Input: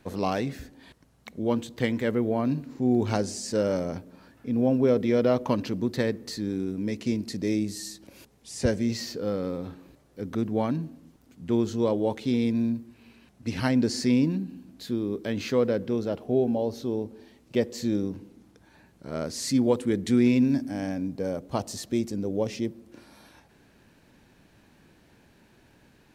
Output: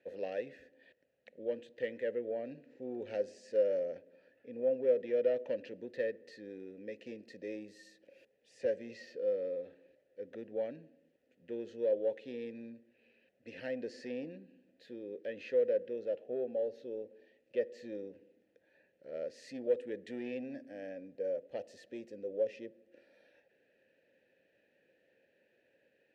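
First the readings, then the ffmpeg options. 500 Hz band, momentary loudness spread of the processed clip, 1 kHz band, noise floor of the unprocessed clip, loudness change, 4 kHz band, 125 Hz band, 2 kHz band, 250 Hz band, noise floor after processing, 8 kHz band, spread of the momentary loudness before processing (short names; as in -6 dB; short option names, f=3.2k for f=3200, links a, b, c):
-6.0 dB, 17 LU, -20.5 dB, -60 dBFS, -10.5 dB, -20.0 dB, -28.5 dB, -11.5 dB, -21.0 dB, -74 dBFS, under -25 dB, 12 LU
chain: -filter_complex "[0:a]asoftclip=type=tanh:threshold=-14.5dB,asplit=3[a][b][c];[a]bandpass=f=530:t=q:w=8,volume=0dB[d];[b]bandpass=f=1.84k:t=q:w=8,volume=-6dB[e];[c]bandpass=f=2.48k:t=q:w=8,volume=-9dB[f];[d][e][f]amix=inputs=3:normalize=0"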